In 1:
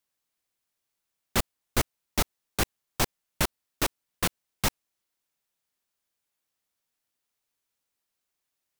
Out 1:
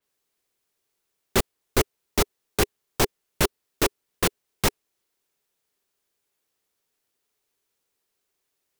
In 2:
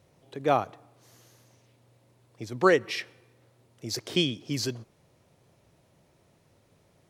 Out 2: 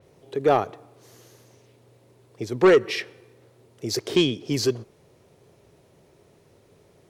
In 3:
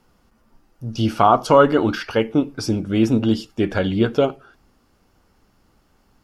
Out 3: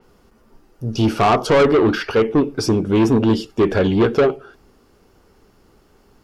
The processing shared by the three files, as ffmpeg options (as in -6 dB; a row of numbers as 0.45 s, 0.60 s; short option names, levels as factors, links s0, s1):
-af "equalizer=f=410:t=o:w=0.48:g=9.5,asoftclip=type=tanh:threshold=0.188,adynamicequalizer=threshold=0.00794:dfrequency=4600:dqfactor=0.7:tfrequency=4600:tqfactor=0.7:attack=5:release=100:ratio=0.375:range=2:mode=cutabove:tftype=highshelf,volume=1.68"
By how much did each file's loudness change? +4.0 LU, +4.5 LU, +2.0 LU